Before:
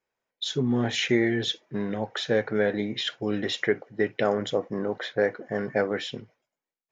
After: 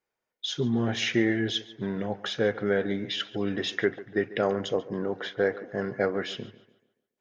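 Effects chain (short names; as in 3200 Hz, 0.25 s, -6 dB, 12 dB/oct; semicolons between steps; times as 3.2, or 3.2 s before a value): speed mistake 25 fps video run at 24 fps; tape echo 0.142 s, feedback 42%, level -16 dB, low-pass 3500 Hz; gain -1.5 dB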